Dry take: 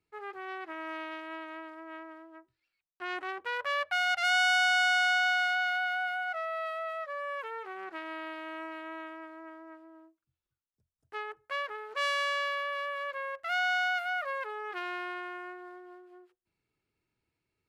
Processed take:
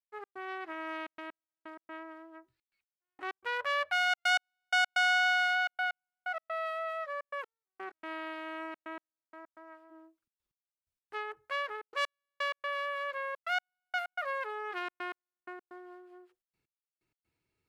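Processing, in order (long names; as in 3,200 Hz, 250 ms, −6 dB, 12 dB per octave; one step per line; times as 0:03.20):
0:09.21–0:09.90: high-pass filter 360 Hz → 540 Hz 12 dB per octave
gate pattern ".x.xxxxxx.x.." 127 BPM −60 dB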